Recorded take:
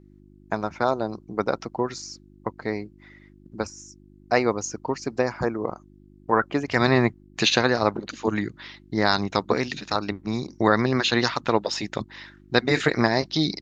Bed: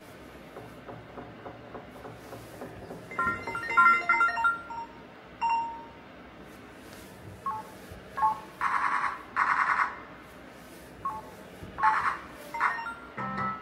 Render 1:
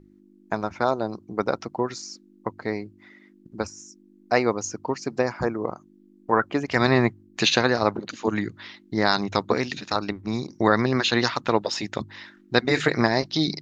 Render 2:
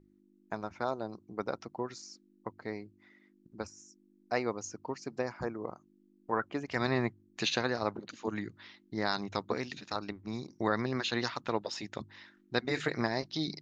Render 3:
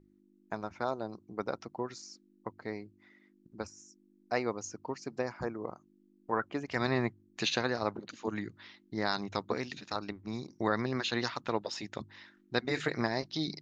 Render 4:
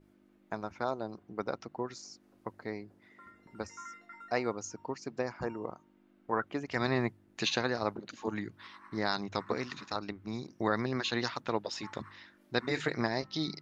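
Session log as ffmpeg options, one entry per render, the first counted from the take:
-af "bandreject=f=50:t=h:w=4,bandreject=f=100:t=h:w=4,bandreject=f=150:t=h:w=4"
-af "volume=-11dB"
-af anull
-filter_complex "[1:a]volume=-27dB[a];[0:a][a]amix=inputs=2:normalize=0"

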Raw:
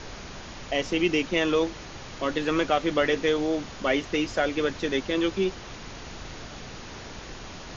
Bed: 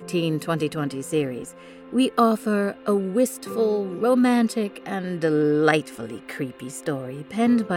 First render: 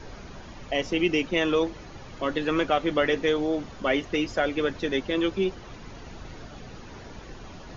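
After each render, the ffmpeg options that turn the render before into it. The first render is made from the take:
-af "afftdn=nr=9:nf=-41"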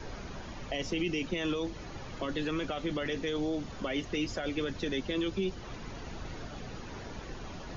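-filter_complex "[0:a]alimiter=limit=-19dB:level=0:latency=1:release=11,acrossover=split=250|3000[a][b][c];[b]acompressor=threshold=-36dB:ratio=3[d];[a][d][c]amix=inputs=3:normalize=0"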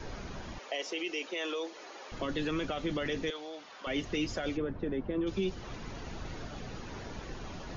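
-filter_complex "[0:a]asettb=1/sr,asplit=3[a][b][c];[a]atrim=end=0.584[d];[b]atrim=start=0.58:end=2.12,asetpts=PTS-STARTPTS,afade=t=in:d=0.004:c=qsin,afade=t=out:st=1.536:d=0.004:c=qsin,highpass=f=390:w=0.5412,highpass=f=390:w=1.3066[e];[c]atrim=start=2.116[f];[d][e]acrossfade=d=0.004:c1=hsin:c2=qsin[g];[g][f]acrossfade=d=0.004:c1=qsin:c2=hsin,asettb=1/sr,asplit=3[h][i][j];[h]atrim=end=3.304[k];[i]atrim=start=3.3:end=3.87,asetpts=PTS-STARTPTS,afade=t=in:d=0.004:c=qsin,afade=t=out:st=0.566:d=0.004:c=qsin,highpass=770,lowpass=5.2k[l];[j]atrim=start=3.866[m];[k][l]acrossfade=d=0.004:c1=hsin:c2=qsin[n];[n][m]acrossfade=d=0.004:c1=qsin:c2=hsin,asplit=3[o][p][q];[o]afade=t=out:st=4.56:d=0.02[r];[p]lowpass=1.2k,afade=t=in:st=4.56:d=0.02,afade=t=out:st=5.26:d=0.02[s];[q]afade=t=in:st=5.26:d=0.02[t];[r][s][t]amix=inputs=3:normalize=0"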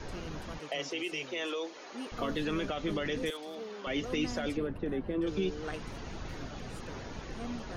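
-filter_complex "[1:a]volume=-22dB[a];[0:a][a]amix=inputs=2:normalize=0"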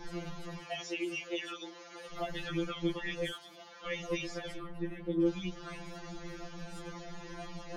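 -af "afftfilt=real='re*2.83*eq(mod(b,8),0)':imag='im*2.83*eq(mod(b,8),0)':win_size=2048:overlap=0.75"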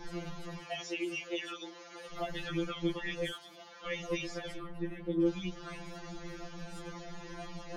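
-af anull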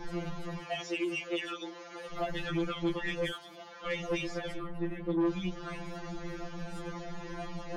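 -filter_complex "[0:a]asplit=2[a][b];[b]adynamicsmooth=sensitivity=6.5:basefreq=3.2k,volume=-2.5dB[c];[a][c]amix=inputs=2:normalize=0,asoftclip=type=tanh:threshold=-24dB"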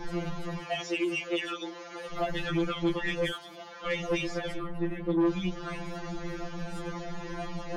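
-af "volume=3.5dB"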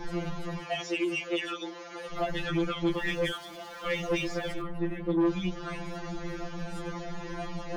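-filter_complex "[0:a]asettb=1/sr,asplit=3[a][b][c];[a]atrim=end=2.924[d];[b]atrim=start=2.92:end=4.62,asetpts=PTS-STARTPTS,afade=t=in:d=0.004:c=qsin,afade=t=out:st=1.696:d=0.004:c=qsin,aeval=exprs='val(0)+0.5*0.00422*sgn(val(0))':c=same[e];[c]atrim=start=4.616[f];[d][e]acrossfade=d=0.004:c1=hsin:c2=qsin[g];[g][f]acrossfade=d=0.004:c1=qsin:c2=hsin"

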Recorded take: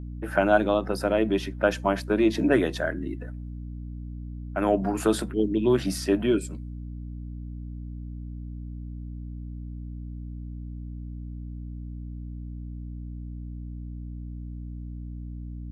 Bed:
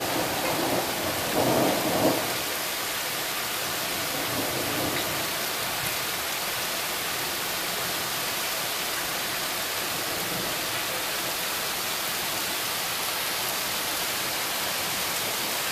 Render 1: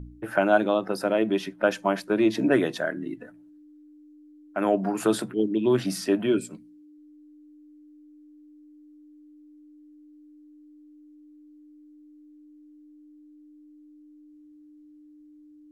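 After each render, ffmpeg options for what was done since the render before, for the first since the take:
-af "bandreject=f=60:t=h:w=4,bandreject=f=120:t=h:w=4,bandreject=f=180:t=h:w=4,bandreject=f=240:t=h:w=4"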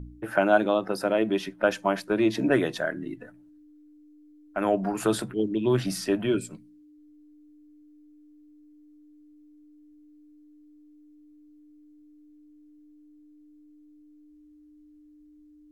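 -af "asubboost=boost=4:cutoff=110"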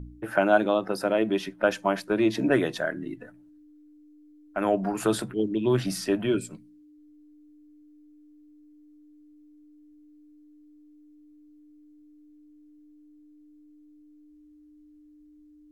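-af anull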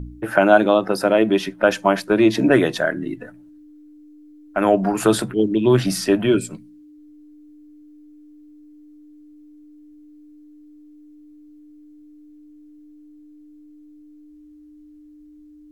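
-af "volume=8dB,alimiter=limit=-2dB:level=0:latency=1"

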